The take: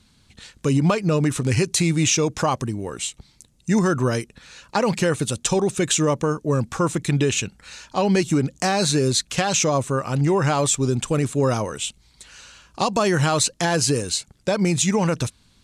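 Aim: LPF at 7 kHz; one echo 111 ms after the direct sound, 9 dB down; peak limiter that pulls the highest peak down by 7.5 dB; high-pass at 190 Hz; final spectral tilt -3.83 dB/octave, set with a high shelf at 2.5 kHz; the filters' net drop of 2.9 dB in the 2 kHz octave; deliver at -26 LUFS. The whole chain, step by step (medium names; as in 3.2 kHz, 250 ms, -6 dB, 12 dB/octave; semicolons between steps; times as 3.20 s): high-pass 190 Hz; low-pass 7 kHz; peaking EQ 2 kHz -7 dB; treble shelf 2.5 kHz +6 dB; peak limiter -11.5 dBFS; delay 111 ms -9 dB; trim -3 dB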